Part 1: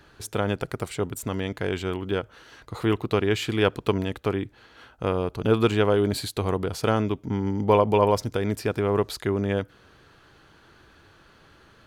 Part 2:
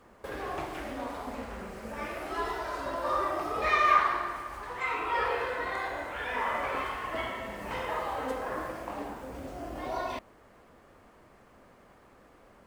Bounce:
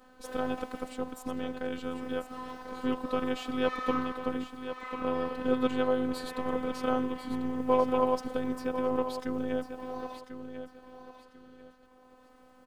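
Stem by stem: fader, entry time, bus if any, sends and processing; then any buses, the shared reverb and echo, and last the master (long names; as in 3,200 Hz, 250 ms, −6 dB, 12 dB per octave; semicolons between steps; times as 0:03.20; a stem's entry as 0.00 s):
−4.0 dB, 0.00 s, no send, echo send −10 dB, noise gate with hold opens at −45 dBFS; high-shelf EQ 3,400 Hz −8.5 dB
+0.5 dB, 0.00 s, no send, echo send −19.5 dB, automatic ducking −9 dB, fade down 1.15 s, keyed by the first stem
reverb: not used
echo: repeating echo 1,044 ms, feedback 27%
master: parametric band 2,100 Hz −6 dB 0.41 octaves; phases set to zero 255 Hz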